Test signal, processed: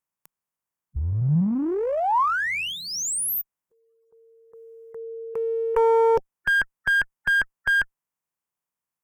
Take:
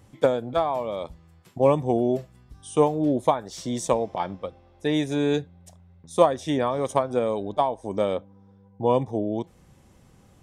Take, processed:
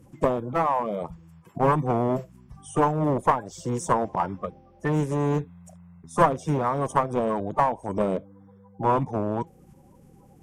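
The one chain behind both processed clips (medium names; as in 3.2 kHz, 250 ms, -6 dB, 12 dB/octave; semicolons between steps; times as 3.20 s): coarse spectral quantiser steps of 30 dB; one-sided clip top -23.5 dBFS; fifteen-band graphic EQ 160 Hz +7 dB, 1 kHz +7 dB, 4 kHz -11 dB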